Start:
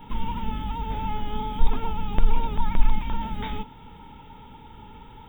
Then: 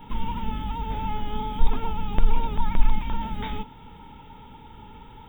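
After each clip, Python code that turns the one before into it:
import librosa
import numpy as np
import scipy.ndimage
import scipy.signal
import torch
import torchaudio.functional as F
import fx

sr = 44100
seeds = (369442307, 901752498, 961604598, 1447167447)

y = x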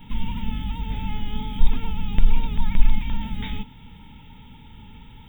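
y = fx.band_shelf(x, sr, hz=690.0, db=-10.5, octaves=2.5)
y = y * 10.0 ** (3.0 / 20.0)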